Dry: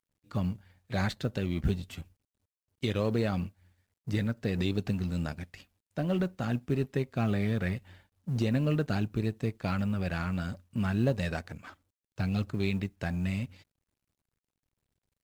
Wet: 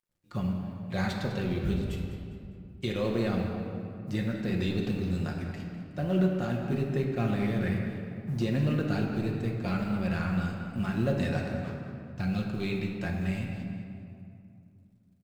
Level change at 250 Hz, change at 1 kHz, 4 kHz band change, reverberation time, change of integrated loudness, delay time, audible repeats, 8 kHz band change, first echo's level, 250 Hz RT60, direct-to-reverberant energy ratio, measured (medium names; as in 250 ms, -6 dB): +2.0 dB, +1.5 dB, 0.0 dB, 2.6 s, +0.5 dB, 202 ms, 1, no reading, -12.0 dB, 3.3 s, -1.0 dB